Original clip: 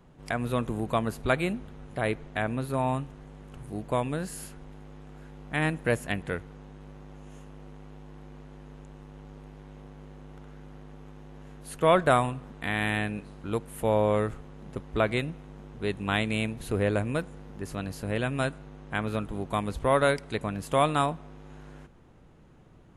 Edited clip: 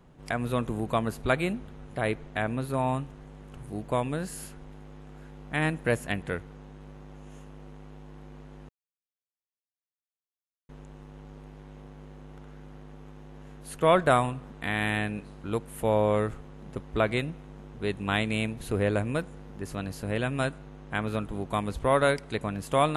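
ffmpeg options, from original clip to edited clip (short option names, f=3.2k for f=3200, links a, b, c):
-filter_complex "[0:a]asplit=2[a][b];[a]atrim=end=8.69,asetpts=PTS-STARTPTS,afade=t=out:st=8.686:d=0.004:c=hsin,apad=pad_dur=2[c];[b]atrim=start=8.69,asetpts=PTS-STARTPTS,afade=t=in:d=0.004:c=hsin[d];[c][d]concat=n=2:v=0:a=1"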